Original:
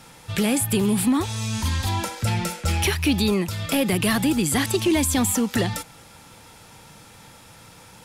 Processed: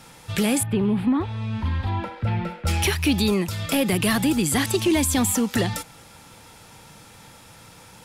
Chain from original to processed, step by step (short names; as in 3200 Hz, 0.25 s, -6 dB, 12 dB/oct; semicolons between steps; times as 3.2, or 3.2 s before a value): 0.63–2.67 air absorption 450 m